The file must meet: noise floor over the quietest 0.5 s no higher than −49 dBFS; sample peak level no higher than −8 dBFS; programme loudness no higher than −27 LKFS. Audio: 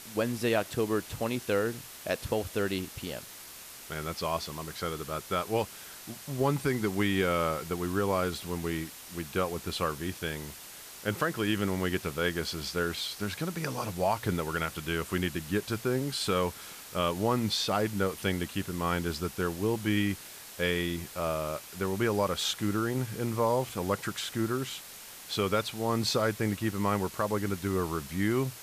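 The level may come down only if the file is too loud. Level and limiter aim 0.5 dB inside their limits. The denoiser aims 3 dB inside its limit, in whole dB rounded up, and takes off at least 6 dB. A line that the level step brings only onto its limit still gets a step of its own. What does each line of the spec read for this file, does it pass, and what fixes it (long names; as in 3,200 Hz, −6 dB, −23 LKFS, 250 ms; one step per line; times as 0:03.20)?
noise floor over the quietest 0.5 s −47 dBFS: out of spec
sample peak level −15.5 dBFS: in spec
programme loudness −31.0 LKFS: in spec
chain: broadband denoise 6 dB, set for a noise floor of −47 dBFS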